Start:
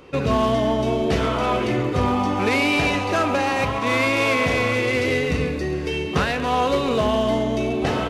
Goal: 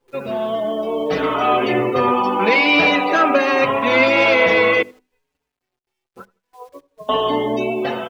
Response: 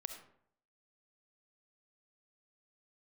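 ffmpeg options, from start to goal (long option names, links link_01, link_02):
-filter_complex "[0:a]asettb=1/sr,asplit=3[link_01][link_02][link_03];[link_01]atrim=end=4.824[link_04];[link_02]atrim=start=4.82:end=7.09,asetpts=PTS-STARTPTS,afade=type=in:duration=0.004:curve=qsin,afade=type=out:start_time=2.266:duration=0.004:curve=qsin,agate=range=-35dB:threshold=-15dB:ratio=16:detection=peak[link_05];[link_03]atrim=start=7.086[link_06];[link_04][link_05]acrossfade=duration=0.004:curve1=hsin:curve2=qsin[link_07];[link_07][link_06]acrossfade=duration=0.004:curve1=qsin:curve2=hsin,bandreject=frequency=50:width_type=h:width=6,bandreject=frequency=100:width_type=h:width=6,bandreject=frequency=150:width_type=h:width=6,bandreject=frequency=200:width_type=h:width=6,bandreject=frequency=250:width_type=h:width=6,bandreject=frequency=300:width_type=h:width=6,bandreject=frequency=350:width_type=h:width=6,bandreject=frequency=400:width_type=h:width=6,afftdn=noise_reduction=24:noise_floor=-35,highpass=250,highshelf=frequency=9900:gain=-10.5,dynaudnorm=framelen=750:gausssize=3:maxgain=16dB,acrusher=bits=9:dc=4:mix=0:aa=0.000001,asplit=2[link_08][link_09];[link_09]adelay=83,lowpass=frequency=990:poles=1,volume=-23dB,asplit=2[link_10][link_11];[link_11]adelay=83,lowpass=frequency=990:poles=1,volume=0.35[link_12];[link_08][link_10][link_12]amix=inputs=3:normalize=0,asplit=2[link_13][link_14];[link_14]adelay=5.3,afreqshift=-0.51[link_15];[link_13][link_15]amix=inputs=2:normalize=1"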